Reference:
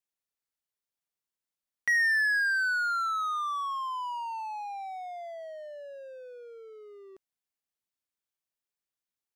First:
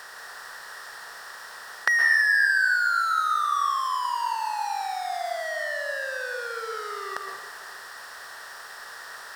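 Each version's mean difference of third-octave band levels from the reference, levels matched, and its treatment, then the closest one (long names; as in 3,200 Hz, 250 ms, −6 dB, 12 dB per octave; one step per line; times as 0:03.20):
12.5 dB: compressor on every frequency bin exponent 0.4
in parallel at −0.5 dB: downward compressor, threshold −36 dBFS, peak gain reduction 15 dB
on the sum: dense smooth reverb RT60 1.4 s, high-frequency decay 0.8×, pre-delay 105 ms, DRR 2.5 dB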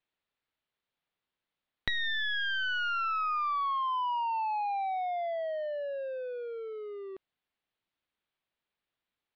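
4.0 dB: wavefolder on the positive side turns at −29.5 dBFS
Butterworth low-pass 4,000 Hz 36 dB per octave
downward compressor 5 to 1, threshold −37 dBFS, peak gain reduction 11.5 dB
level +8 dB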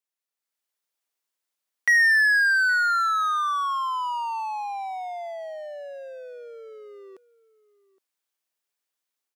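1.5 dB: Bessel high-pass filter 360 Hz
automatic gain control gain up to 7 dB
slap from a distant wall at 140 metres, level −20 dB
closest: third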